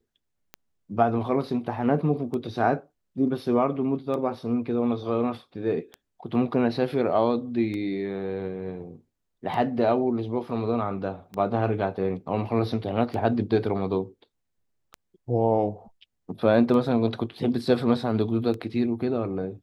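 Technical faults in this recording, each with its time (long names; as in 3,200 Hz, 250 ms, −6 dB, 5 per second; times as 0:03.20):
scratch tick 33 1/3 rpm −22 dBFS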